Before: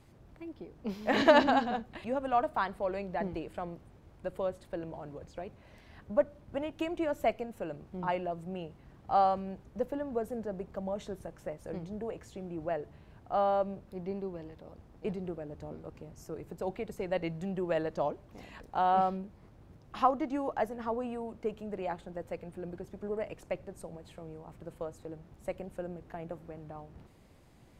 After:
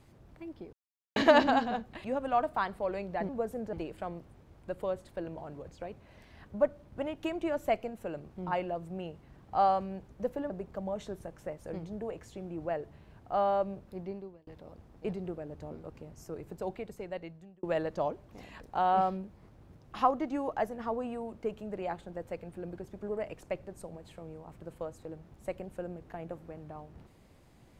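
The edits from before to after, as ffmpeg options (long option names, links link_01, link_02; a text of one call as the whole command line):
ffmpeg -i in.wav -filter_complex "[0:a]asplit=8[link_01][link_02][link_03][link_04][link_05][link_06][link_07][link_08];[link_01]atrim=end=0.73,asetpts=PTS-STARTPTS,afade=type=out:start_time=0.726:duration=0.004:curve=hsin[link_09];[link_02]atrim=start=0.73:end=1.16,asetpts=PTS-STARTPTS,volume=0[link_10];[link_03]atrim=start=1.16:end=3.292,asetpts=PTS-STARTPTS,afade=type=in:duration=0.004:curve=hsin[link_11];[link_04]atrim=start=10.058:end=10.502[link_12];[link_05]atrim=start=3.288:end=10.062[link_13];[link_06]atrim=start=10.498:end=14.47,asetpts=PTS-STARTPTS,afade=type=out:start_time=3.472:duration=0.5[link_14];[link_07]atrim=start=14.47:end=17.63,asetpts=PTS-STARTPTS,afade=type=in:duration=0.004:curve=hsin,afade=type=out:start_time=2.07:duration=1.09[link_15];[link_08]atrim=start=17.63,asetpts=PTS-STARTPTS,afade=type=in:duration=0.004:curve=hsin[link_16];[link_09][link_10][link_11]concat=n=3:v=0:a=1[link_17];[link_17][link_12]acrossfade=duration=0.004:curve1=hsin:curve2=hsin[link_18];[link_18][link_13]acrossfade=duration=0.004:curve1=hsin:curve2=hsin[link_19];[link_14][link_15][link_16]concat=n=3:v=0:a=1[link_20];[link_19][link_20]acrossfade=duration=0.004:curve1=hsin:curve2=hsin" out.wav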